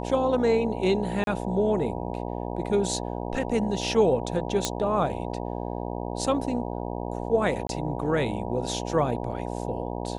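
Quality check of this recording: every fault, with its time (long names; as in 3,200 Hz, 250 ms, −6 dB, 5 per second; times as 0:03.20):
mains buzz 60 Hz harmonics 16 −32 dBFS
0:01.24–0:01.27: drop-out 32 ms
0:04.65: click −8 dBFS
0:07.67–0:07.69: drop-out 22 ms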